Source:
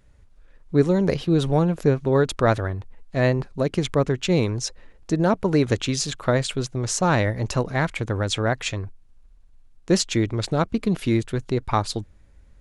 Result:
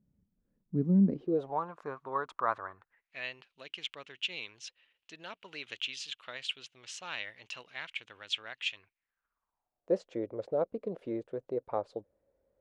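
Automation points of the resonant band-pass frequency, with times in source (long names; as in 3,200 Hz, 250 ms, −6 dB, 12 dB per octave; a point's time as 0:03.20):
resonant band-pass, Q 4.8
0:01.04 200 Hz
0:01.61 1,100 Hz
0:02.68 1,100 Hz
0:03.25 2,900 Hz
0:08.76 2,900 Hz
0:09.94 530 Hz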